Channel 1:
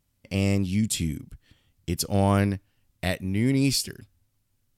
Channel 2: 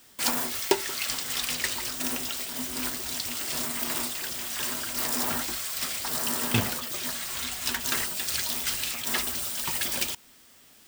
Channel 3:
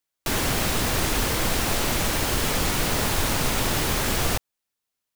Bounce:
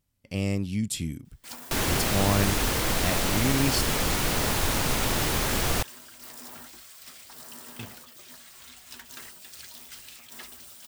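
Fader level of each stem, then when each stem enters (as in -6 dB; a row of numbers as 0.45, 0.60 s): -4.0, -15.5, -2.0 dB; 0.00, 1.25, 1.45 s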